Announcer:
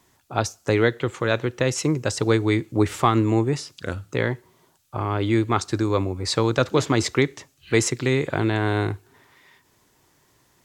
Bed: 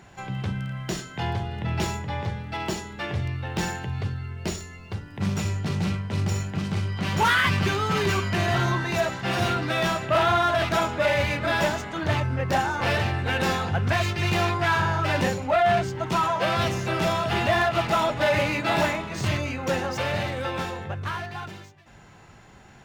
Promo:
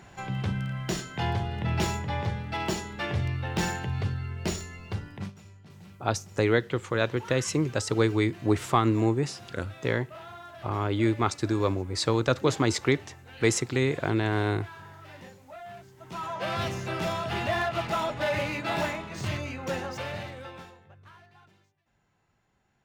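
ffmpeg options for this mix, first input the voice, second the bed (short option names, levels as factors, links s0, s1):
-filter_complex "[0:a]adelay=5700,volume=0.631[s0];[1:a]volume=7.08,afade=t=out:st=5.06:d=0.26:silence=0.0707946,afade=t=in:st=15.97:d=0.59:silence=0.133352,afade=t=out:st=19.8:d=1.01:silence=0.158489[s1];[s0][s1]amix=inputs=2:normalize=0"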